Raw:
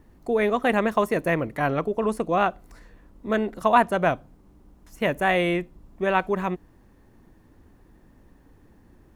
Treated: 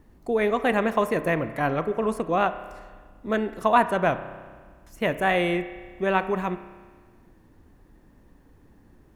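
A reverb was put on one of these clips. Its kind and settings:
spring reverb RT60 1.6 s, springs 31 ms, chirp 80 ms, DRR 11.5 dB
level −1 dB

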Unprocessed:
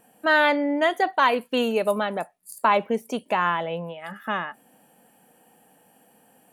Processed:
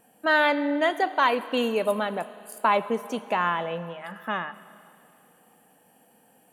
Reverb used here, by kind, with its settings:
four-comb reverb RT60 2.7 s, combs from 26 ms, DRR 14.5 dB
level −2 dB

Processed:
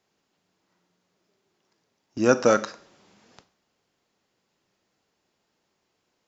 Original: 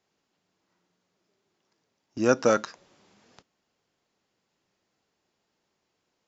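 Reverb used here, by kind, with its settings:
four-comb reverb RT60 0.53 s, combs from 30 ms, DRR 14 dB
level +2.5 dB

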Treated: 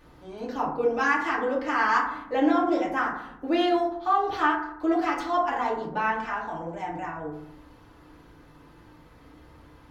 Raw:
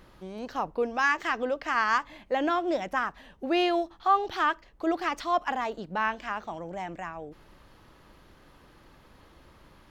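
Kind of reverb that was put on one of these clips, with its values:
feedback delay network reverb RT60 0.74 s, low-frequency decay 1.35×, high-frequency decay 0.35×, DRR −6 dB
level −5 dB

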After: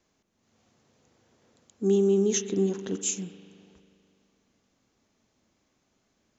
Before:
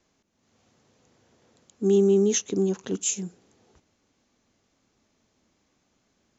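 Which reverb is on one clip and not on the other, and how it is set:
spring reverb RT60 2.4 s, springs 41 ms, chirp 60 ms, DRR 10 dB
level −2.5 dB

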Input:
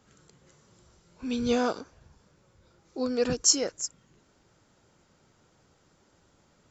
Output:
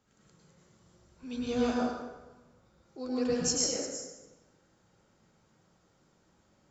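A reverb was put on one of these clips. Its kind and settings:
dense smooth reverb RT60 1.2 s, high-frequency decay 0.65×, pre-delay 90 ms, DRR −5 dB
level −10 dB

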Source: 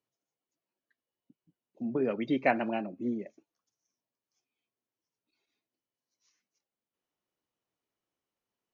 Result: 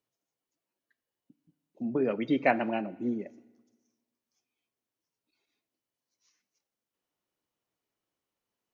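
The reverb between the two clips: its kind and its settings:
feedback delay network reverb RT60 1.3 s, low-frequency decay 1.05×, high-frequency decay 0.95×, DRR 18.5 dB
level +1.5 dB

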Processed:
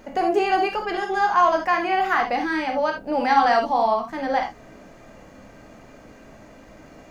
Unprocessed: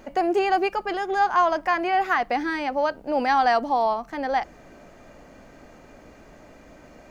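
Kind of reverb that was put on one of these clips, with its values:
reverb whose tail is shaped and stops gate 100 ms flat, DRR 2 dB

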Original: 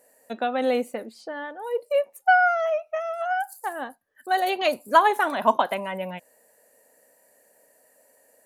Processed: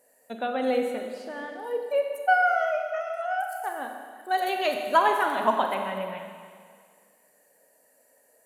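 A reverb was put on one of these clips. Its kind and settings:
four-comb reverb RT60 2 s, combs from 31 ms, DRR 3.5 dB
level −4 dB

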